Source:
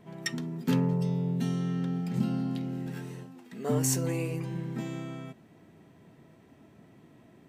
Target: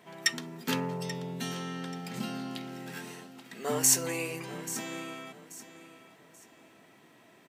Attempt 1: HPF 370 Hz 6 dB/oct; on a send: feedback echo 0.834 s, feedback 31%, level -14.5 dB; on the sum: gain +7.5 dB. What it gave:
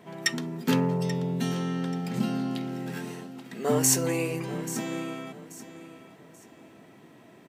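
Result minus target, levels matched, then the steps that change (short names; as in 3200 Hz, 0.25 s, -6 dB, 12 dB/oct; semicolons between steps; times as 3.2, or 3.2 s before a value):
500 Hz band +3.0 dB
change: HPF 1200 Hz 6 dB/oct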